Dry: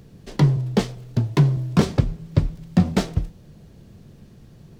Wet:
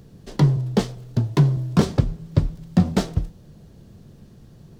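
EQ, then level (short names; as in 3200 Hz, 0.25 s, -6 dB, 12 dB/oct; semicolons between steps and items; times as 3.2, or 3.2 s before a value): bell 2300 Hz -4 dB 0.71 oct; 0.0 dB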